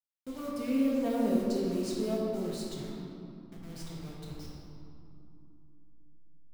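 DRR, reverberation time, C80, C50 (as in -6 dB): -4.5 dB, 2.9 s, 0.5 dB, -1.5 dB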